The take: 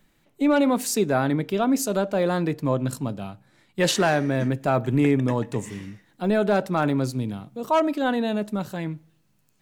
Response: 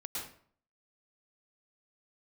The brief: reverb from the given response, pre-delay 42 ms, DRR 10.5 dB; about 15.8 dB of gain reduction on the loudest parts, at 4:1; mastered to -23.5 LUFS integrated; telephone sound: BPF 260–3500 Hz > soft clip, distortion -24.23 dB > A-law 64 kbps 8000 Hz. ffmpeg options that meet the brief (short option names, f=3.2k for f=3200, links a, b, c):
-filter_complex "[0:a]acompressor=threshold=-36dB:ratio=4,asplit=2[a][b];[1:a]atrim=start_sample=2205,adelay=42[c];[b][c]afir=irnorm=-1:irlink=0,volume=-11.5dB[d];[a][d]amix=inputs=2:normalize=0,highpass=260,lowpass=3.5k,asoftclip=threshold=-26.5dB,volume=17dB" -ar 8000 -c:a pcm_alaw